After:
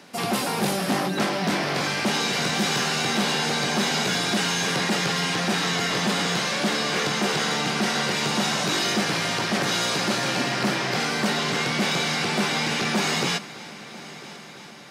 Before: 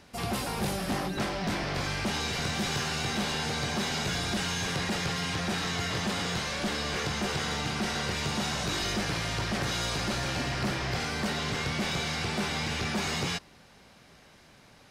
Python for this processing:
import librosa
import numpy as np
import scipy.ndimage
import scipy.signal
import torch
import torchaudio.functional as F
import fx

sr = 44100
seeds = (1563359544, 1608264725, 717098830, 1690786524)

y = scipy.signal.sosfilt(scipy.signal.butter(4, 160.0, 'highpass', fs=sr, output='sos'), x)
y = fx.echo_heads(y, sr, ms=332, heads='first and third', feedback_pct=68, wet_db=-20.5)
y = y * librosa.db_to_amplitude(7.5)